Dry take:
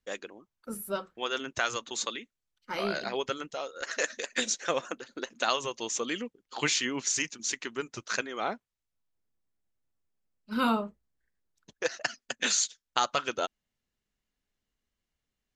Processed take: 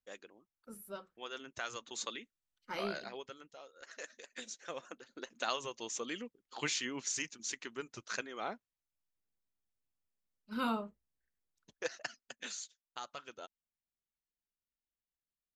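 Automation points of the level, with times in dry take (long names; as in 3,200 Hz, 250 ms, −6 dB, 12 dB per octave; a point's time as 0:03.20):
0:01.55 −12.5 dB
0:02.19 −6 dB
0:02.84 −6 dB
0:03.31 −17 dB
0:04.46 −17 dB
0:05.34 −8 dB
0:11.88 −8 dB
0:12.61 −18 dB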